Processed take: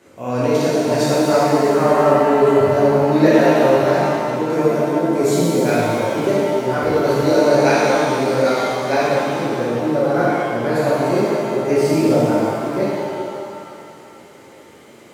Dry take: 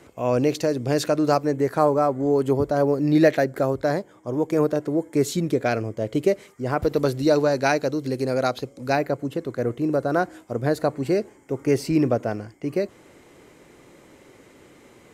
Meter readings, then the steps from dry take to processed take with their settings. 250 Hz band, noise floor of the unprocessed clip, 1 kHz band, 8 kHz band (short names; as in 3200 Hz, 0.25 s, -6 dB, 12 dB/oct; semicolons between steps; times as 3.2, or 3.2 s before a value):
+5.5 dB, -52 dBFS, +8.5 dB, +7.5 dB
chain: HPF 110 Hz; shimmer reverb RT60 2.4 s, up +7 st, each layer -8 dB, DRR -9 dB; gain -3.5 dB